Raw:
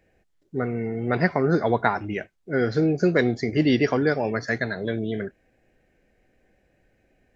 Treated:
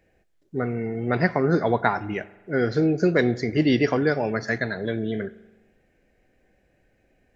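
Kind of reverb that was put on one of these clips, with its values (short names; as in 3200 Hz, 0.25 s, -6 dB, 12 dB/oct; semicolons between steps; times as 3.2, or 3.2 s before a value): spring tank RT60 1.1 s, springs 41 ms, chirp 75 ms, DRR 17.5 dB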